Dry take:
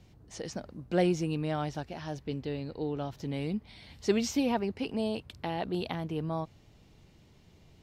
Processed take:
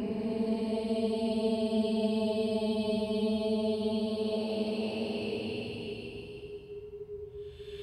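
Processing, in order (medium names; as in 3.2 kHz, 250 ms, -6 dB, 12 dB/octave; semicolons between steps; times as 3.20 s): whistle 410 Hz -41 dBFS; Paulstretch 24×, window 0.10 s, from 4.95 s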